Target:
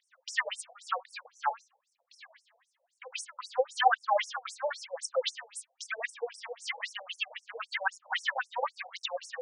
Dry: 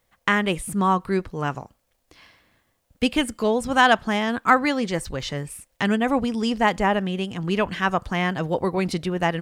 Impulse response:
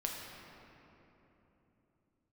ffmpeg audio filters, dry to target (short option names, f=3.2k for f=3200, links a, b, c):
-filter_complex "[0:a]acrossover=split=3900[a][b];[a]alimiter=limit=-14.5dB:level=0:latency=1:release=75[c];[c][b]amix=inputs=2:normalize=0,asoftclip=type=hard:threshold=-17.5dB,aphaser=in_gain=1:out_gain=1:delay=4.9:decay=0.76:speed=1:type=triangular,afftfilt=real='re*between(b*sr/1024,610*pow(7600/610,0.5+0.5*sin(2*PI*3.8*pts/sr))/1.41,610*pow(7600/610,0.5+0.5*sin(2*PI*3.8*pts/sr))*1.41)':imag='im*between(b*sr/1024,610*pow(7600/610,0.5+0.5*sin(2*PI*3.8*pts/sr))/1.41,610*pow(7600/610,0.5+0.5*sin(2*PI*3.8*pts/sr))*1.41)':win_size=1024:overlap=0.75"